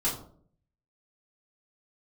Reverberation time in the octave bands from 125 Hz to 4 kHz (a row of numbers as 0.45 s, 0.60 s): 0.85 s, 0.70 s, 0.65 s, 0.45 s, 0.35 s, 0.30 s